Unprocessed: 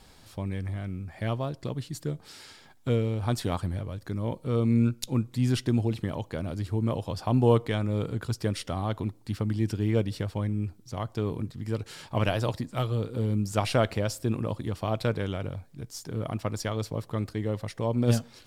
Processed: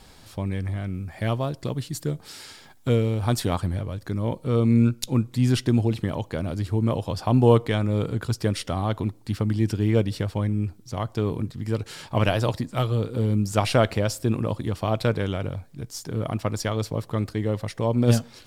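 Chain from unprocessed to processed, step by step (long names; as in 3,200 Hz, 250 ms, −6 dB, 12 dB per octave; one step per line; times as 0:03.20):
0:00.94–0:03.45: high-shelf EQ 7,600 Hz +5.5 dB
level +4.5 dB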